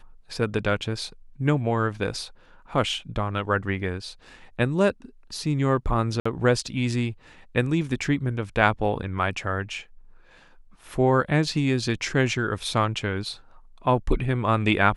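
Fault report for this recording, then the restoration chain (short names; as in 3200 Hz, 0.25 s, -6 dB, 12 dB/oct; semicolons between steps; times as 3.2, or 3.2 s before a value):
6.2–6.25 gap 55 ms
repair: interpolate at 6.2, 55 ms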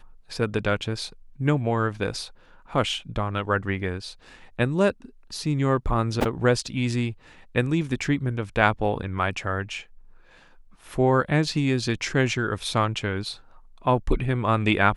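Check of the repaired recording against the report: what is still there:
none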